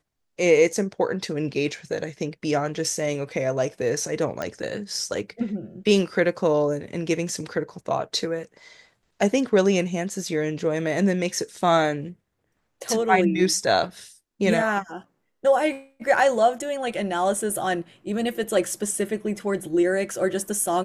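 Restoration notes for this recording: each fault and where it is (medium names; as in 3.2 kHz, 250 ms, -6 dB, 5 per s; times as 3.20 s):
4.42 s: pop -15 dBFS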